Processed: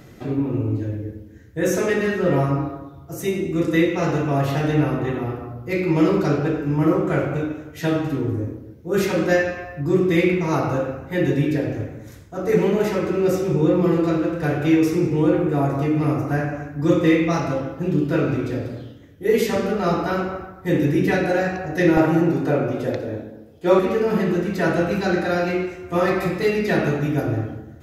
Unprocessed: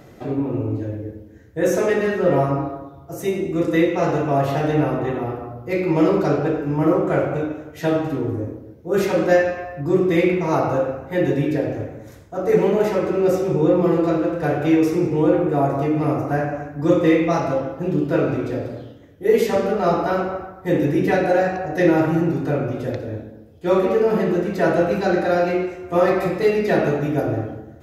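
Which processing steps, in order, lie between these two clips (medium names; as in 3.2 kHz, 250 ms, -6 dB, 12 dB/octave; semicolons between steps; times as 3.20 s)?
peaking EQ 660 Hz -7.5 dB 1.6 oct, from 21.97 s 75 Hz, from 23.79 s 590 Hz; trim +2.5 dB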